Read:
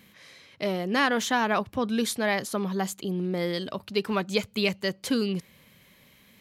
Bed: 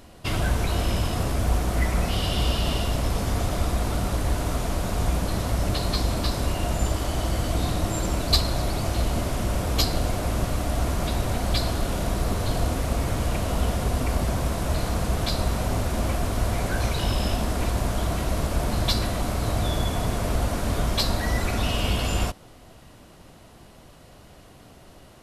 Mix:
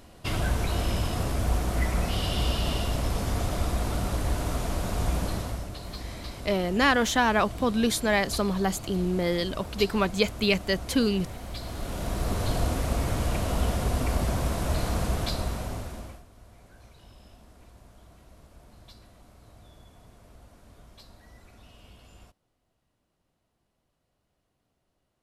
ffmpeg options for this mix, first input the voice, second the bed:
ffmpeg -i stem1.wav -i stem2.wav -filter_complex "[0:a]adelay=5850,volume=2dB[link_01];[1:a]volume=8.5dB,afade=type=out:start_time=5.26:duration=0.42:silence=0.298538,afade=type=in:start_time=11.58:duration=0.85:silence=0.266073,afade=type=out:start_time=15.02:duration=1.22:silence=0.0501187[link_02];[link_01][link_02]amix=inputs=2:normalize=0" out.wav

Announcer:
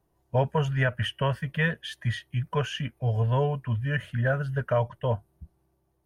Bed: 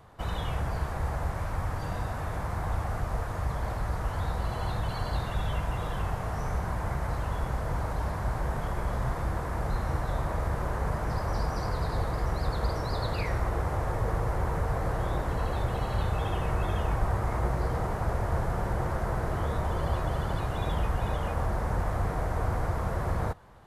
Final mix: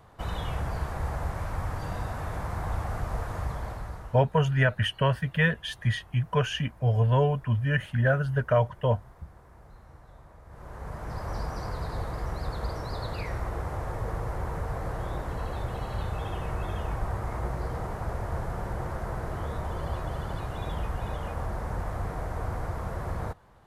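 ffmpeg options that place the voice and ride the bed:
ffmpeg -i stem1.wav -i stem2.wav -filter_complex "[0:a]adelay=3800,volume=2dB[link_01];[1:a]volume=17.5dB,afade=type=out:start_time=3.38:duration=0.88:silence=0.0891251,afade=type=in:start_time=10.46:duration=0.86:silence=0.125893[link_02];[link_01][link_02]amix=inputs=2:normalize=0" out.wav

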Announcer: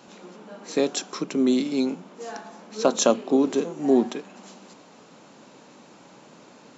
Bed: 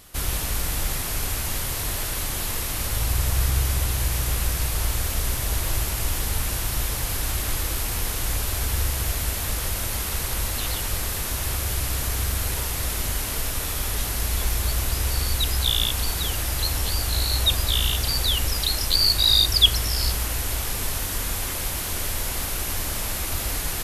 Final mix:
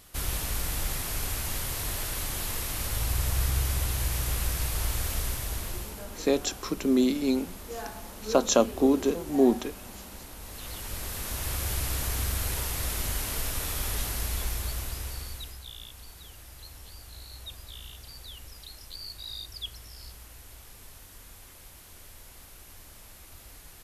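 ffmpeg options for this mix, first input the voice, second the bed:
ffmpeg -i stem1.wav -i stem2.wav -filter_complex "[0:a]adelay=5500,volume=-2dB[link_01];[1:a]volume=9dB,afade=type=out:start_time=5.14:duration=0.92:silence=0.211349,afade=type=in:start_time=10.4:duration=1.27:silence=0.199526,afade=type=out:start_time=13.94:duration=1.68:silence=0.133352[link_02];[link_01][link_02]amix=inputs=2:normalize=0" out.wav

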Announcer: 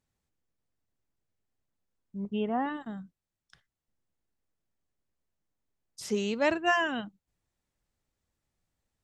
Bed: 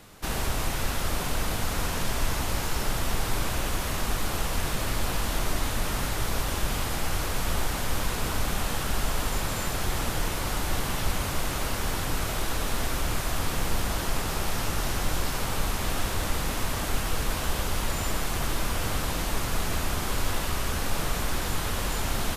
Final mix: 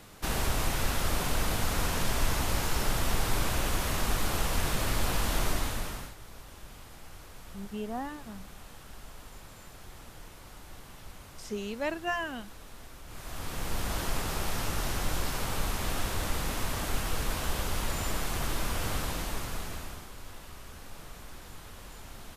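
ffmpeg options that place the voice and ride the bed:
ffmpeg -i stem1.wav -i stem2.wav -filter_complex "[0:a]adelay=5400,volume=-6dB[link_01];[1:a]volume=15.5dB,afade=type=out:start_time=5.45:duration=0.7:silence=0.112202,afade=type=in:start_time=13.06:duration=0.92:silence=0.149624,afade=type=out:start_time=18.95:duration=1.15:silence=0.188365[link_02];[link_01][link_02]amix=inputs=2:normalize=0" out.wav

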